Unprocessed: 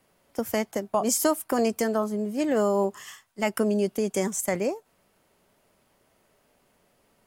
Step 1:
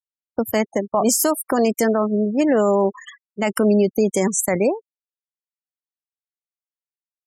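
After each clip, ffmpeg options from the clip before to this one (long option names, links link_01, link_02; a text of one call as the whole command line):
ffmpeg -i in.wav -af "afftfilt=real='re*gte(hypot(re,im),0.02)':imag='im*gte(hypot(re,im),0.02)':win_size=1024:overlap=0.75,alimiter=limit=-18dB:level=0:latency=1:release=38,volume=9dB" out.wav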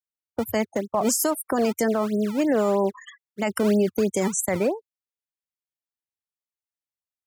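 ffmpeg -i in.wav -filter_complex "[0:a]equalizer=frequency=90:width=2.3:gain=10.5,acrossover=split=230[link_01][link_02];[link_01]acrusher=samples=23:mix=1:aa=0.000001:lfo=1:lforange=36.8:lforate=3.1[link_03];[link_03][link_02]amix=inputs=2:normalize=0,volume=-4.5dB" out.wav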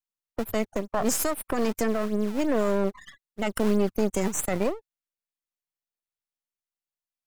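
ffmpeg -i in.wav -af "aeval=exprs='if(lt(val(0),0),0.251*val(0),val(0))':channel_layout=same" out.wav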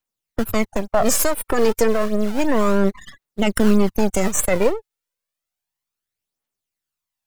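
ffmpeg -i in.wav -af "aphaser=in_gain=1:out_gain=1:delay=2.4:decay=0.47:speed=0.31:type=triangular,volume=7dB" out.wav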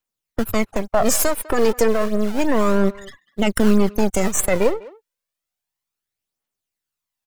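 ffmpeg -i in.wav -filter_complex "[0:a]asplit=2[link_01][link_02];[link_02]adelay=200,highpass=300,lowpass=3400,asoftclip=type=hard:threshold=-13dB,volume=-19dB[link_03];[link_01][link_03]amix=inputs=2:normalize=0" out.wav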